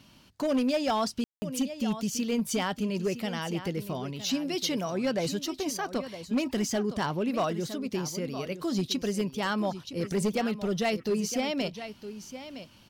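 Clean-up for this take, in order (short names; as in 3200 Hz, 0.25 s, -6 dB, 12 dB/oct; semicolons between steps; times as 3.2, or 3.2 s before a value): clip repair -21.5 dBFS; room tone fill 1.24–1.42; inverse comb 0.963 s -12.5 dB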